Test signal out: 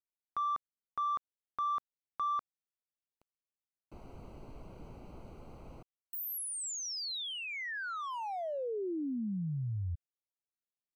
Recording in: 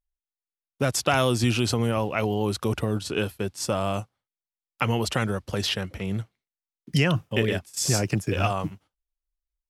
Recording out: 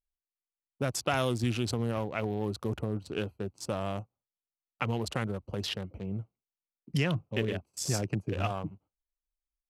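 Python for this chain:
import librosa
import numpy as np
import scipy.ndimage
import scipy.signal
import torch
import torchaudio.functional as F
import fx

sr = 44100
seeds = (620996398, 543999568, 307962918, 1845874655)

y = fx.wiener(x, sr, points=25)
y = y * 10.0 ** (-6.5 / 20.0)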